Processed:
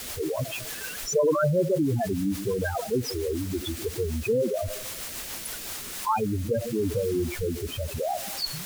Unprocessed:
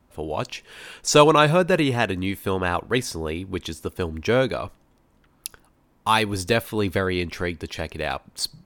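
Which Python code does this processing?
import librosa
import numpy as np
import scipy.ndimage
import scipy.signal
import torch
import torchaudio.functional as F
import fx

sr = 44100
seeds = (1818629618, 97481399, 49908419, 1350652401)

p1 = fx.rev_freeverb(x, sr, rt60_s=0.8, hf_ratio=0.5, predelay_ms=35, drr_db=15.0)
p2 = fx.spec_topn(p1, sr, count=4)
p3 = fx.quant_dither(p2, sr, seeds[0], bits=6, dither='triangular')
p4 = p2 + F.gain(torch.from_numpy(p3), -6.5).numpy()
p5 = fx.rotary_switch(p4, sr, hz=6.7, then_hz=0.8, switch_at_s=5.28)
p6 = fx.env_flatten(p5, sr, amount_pct=50)
y = F.gain(torch.from_numpy(p6), -6.5).numpy()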